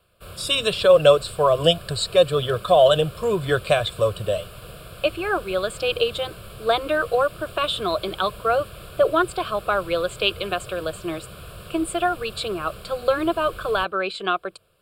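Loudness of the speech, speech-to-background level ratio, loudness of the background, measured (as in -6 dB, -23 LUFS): -22.0 LUFS, 18.5 dB, -40.5 LUFS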